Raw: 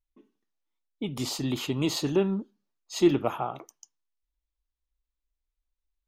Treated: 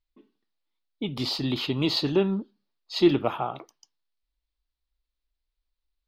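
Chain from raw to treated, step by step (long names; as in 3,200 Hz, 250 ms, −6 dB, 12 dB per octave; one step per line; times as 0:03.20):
high shelf with overshoot 5,600 Hz −8 dB, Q 3
level +1.5 dB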